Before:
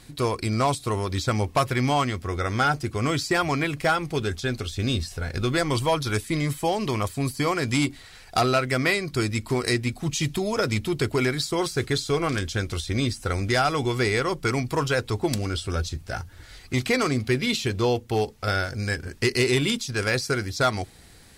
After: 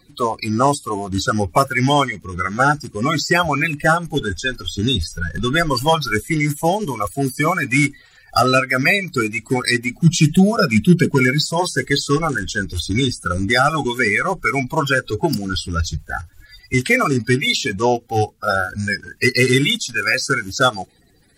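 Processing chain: coarse spectral quantiser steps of 30 dB; spectral noise reduction 13 dB; 9.92–11.45 s: peaking EQ 180 Hz +13.5 dB 0.58 oct; trim +8.5 dB

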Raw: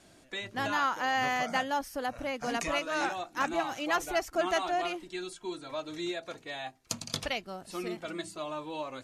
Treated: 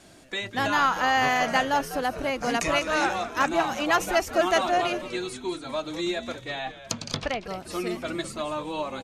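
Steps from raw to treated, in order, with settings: 6.41–7.45 s: low-pass that closes with the level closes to 1.7 kHz, closed at -29.5 dBFS; on a send: frequency-shifting echo 199 ms, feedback 45%, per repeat -110 Hz, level -12.5 dB; on the sum: trim +6.5 dB

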